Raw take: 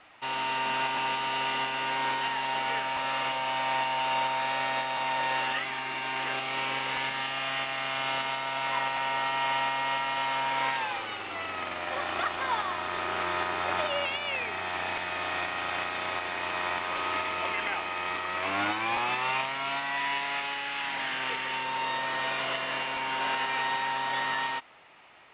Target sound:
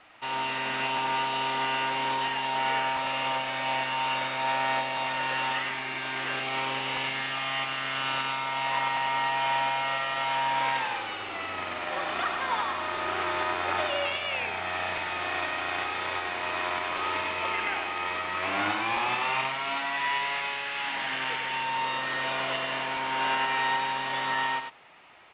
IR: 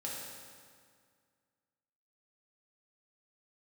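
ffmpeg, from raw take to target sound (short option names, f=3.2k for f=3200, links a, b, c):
-af "aecho=1:1:98:0.531"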